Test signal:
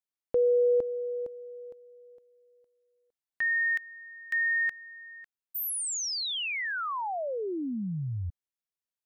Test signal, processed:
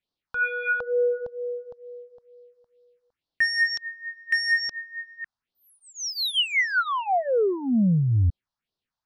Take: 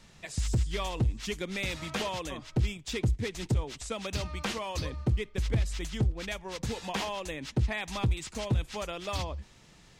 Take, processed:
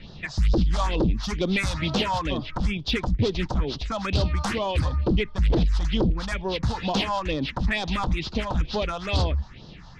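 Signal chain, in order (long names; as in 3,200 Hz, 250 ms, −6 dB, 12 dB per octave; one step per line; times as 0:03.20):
inverse Chebyshev low-pass filter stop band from 8,700 Hz, stop band 40 dB
sine wavefolder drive 10 dB, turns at −17 dBFS
all-pass phaser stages 4, 2.2 Hz, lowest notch 360–2,200 Hz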